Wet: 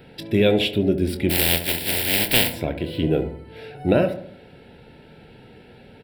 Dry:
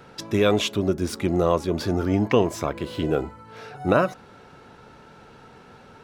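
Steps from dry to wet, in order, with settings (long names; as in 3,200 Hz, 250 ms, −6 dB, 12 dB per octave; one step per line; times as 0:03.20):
0:01.29–0:02.52: compressing power law on the bin magnitudes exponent 0.13
phaser with its sweep stopped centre 2,800 Hz, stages 4
double-tracking delay 25 ms −12 dB
feedback echo with a low-pass in the loop 70 ms, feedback 53%, low-pass 1,300 Hz, level −9.5 dB
level +3.5 dB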